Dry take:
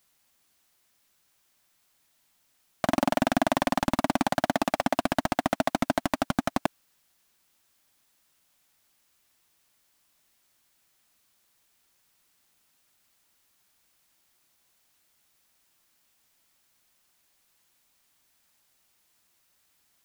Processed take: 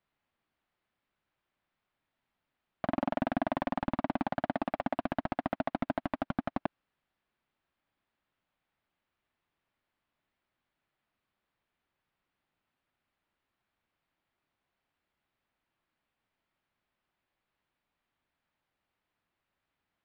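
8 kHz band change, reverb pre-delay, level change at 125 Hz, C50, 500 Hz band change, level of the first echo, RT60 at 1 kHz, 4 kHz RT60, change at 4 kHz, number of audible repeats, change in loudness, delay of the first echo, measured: below −30 dB, no reverb audible, −6.0 dB, no reverb audible, −7.0 dB, no echo audible, no reverb audible, no reverb audible, −15.5 dB, no echo audible, −7.0 dB, no echo audible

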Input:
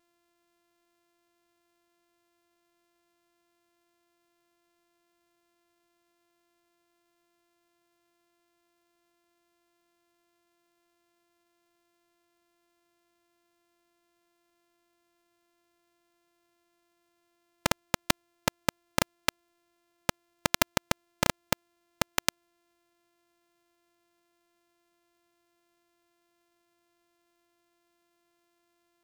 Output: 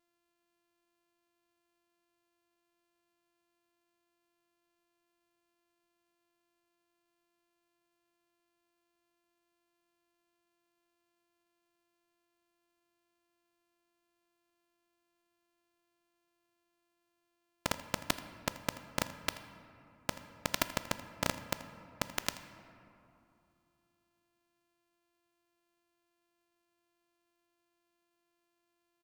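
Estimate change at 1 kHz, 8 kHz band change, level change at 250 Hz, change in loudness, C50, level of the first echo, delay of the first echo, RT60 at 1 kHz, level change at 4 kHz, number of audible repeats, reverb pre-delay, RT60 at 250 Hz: −7.0 dB, −7.5 dB, −7.0 dB, −7.0 dB, 11.0 dB, −17.5 dB, 82 ms, 2.7 s, −7.0 dB, 1, 3 ms, 3.0 s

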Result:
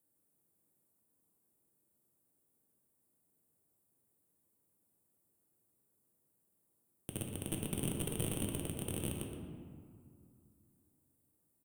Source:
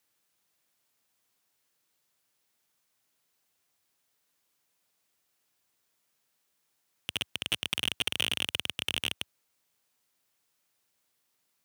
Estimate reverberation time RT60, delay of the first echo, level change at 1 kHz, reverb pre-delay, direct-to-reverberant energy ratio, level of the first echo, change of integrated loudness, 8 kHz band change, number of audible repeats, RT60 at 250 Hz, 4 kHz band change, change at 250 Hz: 2.4 s, 119 ms, −7.0 dB, 3 ms, 0.0 dB, −9.5 dB, −8.5 dB, −1.5 dB, 1, 3.1 s, −20.0 dB, +7.5 dB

